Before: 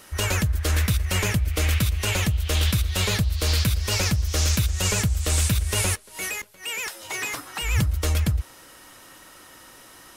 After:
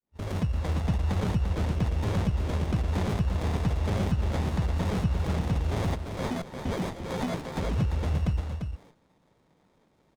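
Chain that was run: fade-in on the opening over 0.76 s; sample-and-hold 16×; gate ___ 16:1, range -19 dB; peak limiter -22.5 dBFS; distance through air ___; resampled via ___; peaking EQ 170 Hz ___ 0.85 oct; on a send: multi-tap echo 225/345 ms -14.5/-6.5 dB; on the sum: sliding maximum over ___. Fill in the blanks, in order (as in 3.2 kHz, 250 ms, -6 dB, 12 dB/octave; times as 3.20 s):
-41 dBFS, 69 m, 32 kHz, +7.5 dB, 17 samples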